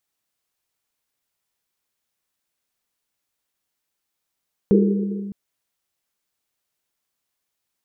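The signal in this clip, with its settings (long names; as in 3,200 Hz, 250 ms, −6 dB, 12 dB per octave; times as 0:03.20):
drum after Risset length 0.61 s, pitch 200 Hz, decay 2.31 s, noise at 400 Hz, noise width 120 Hz, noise 35%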